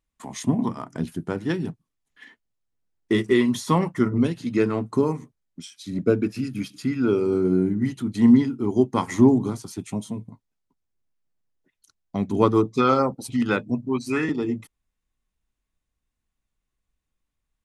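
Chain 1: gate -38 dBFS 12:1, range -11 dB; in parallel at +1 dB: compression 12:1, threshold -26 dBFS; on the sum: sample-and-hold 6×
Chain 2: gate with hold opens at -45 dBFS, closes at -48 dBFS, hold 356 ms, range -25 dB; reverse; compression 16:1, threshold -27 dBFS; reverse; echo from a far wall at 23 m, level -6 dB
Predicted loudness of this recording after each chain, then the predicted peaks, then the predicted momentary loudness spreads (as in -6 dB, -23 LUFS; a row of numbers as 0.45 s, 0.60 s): -20.5 LUFS, -32.5 LUFS; -2.0 dBFS, -15.5 dBFS; 11 LU, 10 LU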